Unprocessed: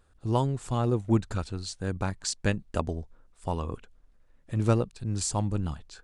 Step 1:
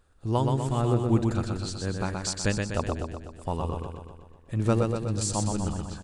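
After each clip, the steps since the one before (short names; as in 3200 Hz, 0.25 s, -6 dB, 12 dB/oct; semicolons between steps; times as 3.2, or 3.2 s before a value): feedback echo 0.124 s, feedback 58%, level -4 dB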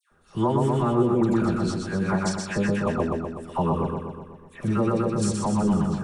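limiter -19 dBFS, peak gain reduction 8 dB; dispersion lows, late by 0.117 s, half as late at 1500 Hz; reverb RT60 0.15 s, pre-delay 3 ms, DRR 7 dB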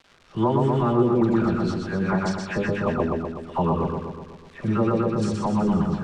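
crackle 380/s -39 dBFS; LPF 4200 Hz 12 dB/oct; notches 50/100/150/200 Hz; gain +1.5 dB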